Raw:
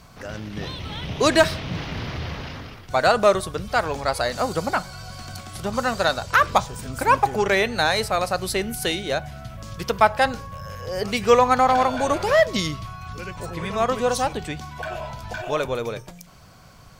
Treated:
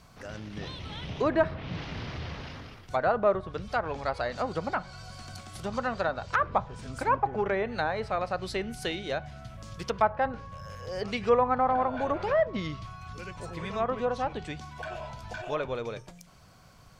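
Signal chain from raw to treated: low-pass that closes with the level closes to 1.4 kHz, closed at -16 dBFS; trim -7 dB

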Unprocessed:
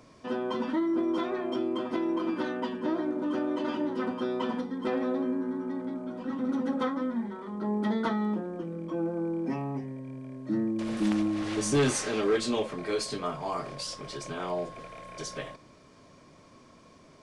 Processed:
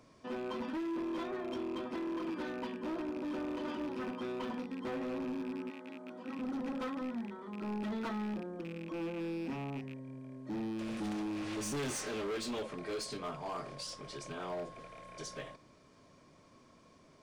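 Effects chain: rattle on loud lows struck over -37 dBFS, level -33 dBFS; 5.69–6.35 s: high-pass 870 Hz -> 230 Hz 6 dB/octave; overload inside the chain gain 28 dB; trim -6.5 dB

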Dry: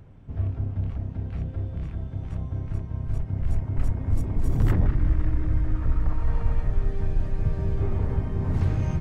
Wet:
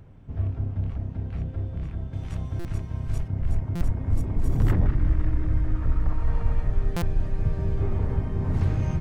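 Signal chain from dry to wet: 2.13–3.28 s: treble shelf 2.1 kHz +11.5 dB; buffer glitch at 2.59/3.75/6.96 s, samples 256, times 9

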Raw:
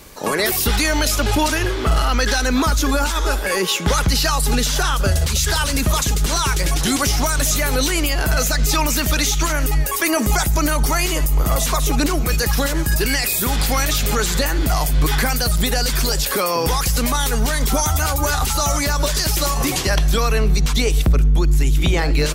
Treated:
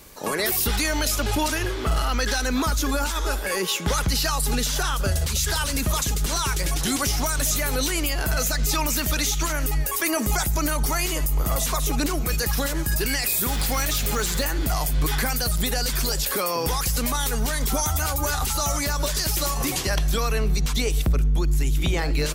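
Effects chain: treble shelf 9.1 kHz +5 dB; 13.22–14.45 s: modulation noise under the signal 20 dB; trim -6 dB

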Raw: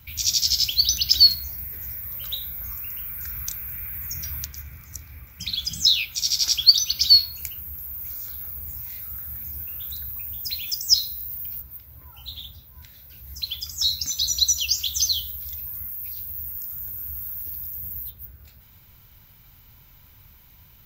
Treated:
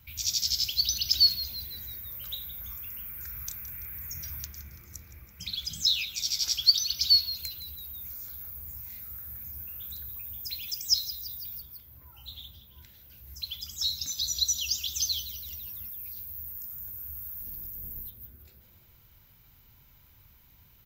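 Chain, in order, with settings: 17.39–18.07 s: octave divider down 1 oct, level +2 dB; on a send: frequency-shifting echo 167 ms, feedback 53%, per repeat -140 Hz, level -14.5 dB; on the sum: trim -7 dB

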